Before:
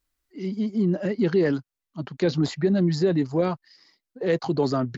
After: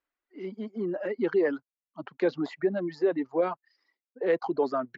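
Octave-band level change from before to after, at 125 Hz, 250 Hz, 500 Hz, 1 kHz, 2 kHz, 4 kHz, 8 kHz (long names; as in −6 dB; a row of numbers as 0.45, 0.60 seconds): −18.5 dB, −8.0 dB, −2.5 dB, −1.0 dB, −2.0 dB, −13.0 dB, can't be measured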